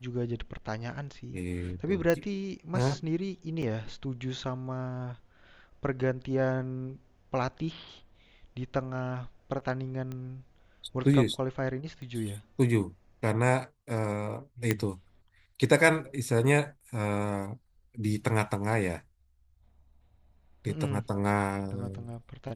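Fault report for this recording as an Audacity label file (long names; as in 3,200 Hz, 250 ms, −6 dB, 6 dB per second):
2.100000	2.100000	click −13 dBFS
3.620000	3.630000	drop-out 5.5 ms
10.120000	10.120000	click −26 dBFS
12.020000	12.020000	click −33 dBFS
14.710000	14.710000	click −11 dBFS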